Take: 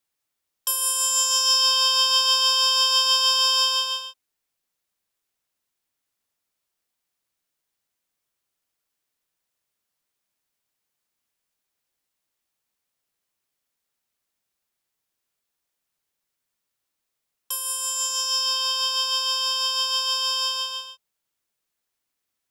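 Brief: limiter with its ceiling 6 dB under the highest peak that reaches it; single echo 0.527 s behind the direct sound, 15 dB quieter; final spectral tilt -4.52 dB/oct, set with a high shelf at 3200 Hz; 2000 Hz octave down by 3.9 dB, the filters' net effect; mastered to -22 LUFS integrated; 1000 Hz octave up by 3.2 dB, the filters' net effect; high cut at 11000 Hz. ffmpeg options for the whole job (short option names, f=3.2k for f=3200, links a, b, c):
-af "lowpass=11k,equalizer=f=1k:t=o:g=5,equalizer=f=2k:t=o:g=-4.5,highshelf=f=3.2k:g=-8,alimiter=limit=-17dB:level=0:latency=1,aecho=1:1:527:0.178,volume=5.5dB"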